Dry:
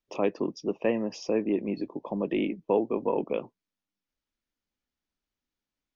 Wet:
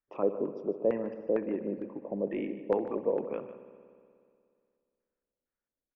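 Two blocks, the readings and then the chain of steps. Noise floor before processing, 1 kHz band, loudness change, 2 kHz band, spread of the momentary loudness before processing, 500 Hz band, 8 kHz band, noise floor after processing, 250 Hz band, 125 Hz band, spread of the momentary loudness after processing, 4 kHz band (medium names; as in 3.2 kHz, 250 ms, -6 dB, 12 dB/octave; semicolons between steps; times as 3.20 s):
under -85 dBFS, -6.0 dB, -3.0 dB, -8.5 dB, 6 LU, -2.0 dB, no reading, under -85 dBFS, -5.5 dB, -5.5 dB, 8 LU, under -15 dB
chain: LFO low-pass square 2.2 Hz 550–1600 Hz; delay 149 ms -14 dB; spring tank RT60 2.3 s, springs 60 ms, chirp 30 ms, DRR 11.5 dB; trim -7 dB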